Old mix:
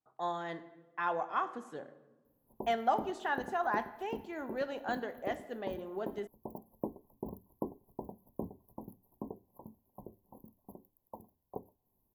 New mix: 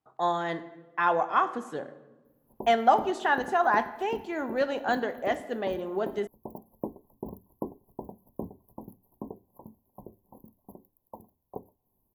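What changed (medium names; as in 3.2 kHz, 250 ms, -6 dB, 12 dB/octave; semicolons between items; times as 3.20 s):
speech +9.0 dB; background +3.0 dB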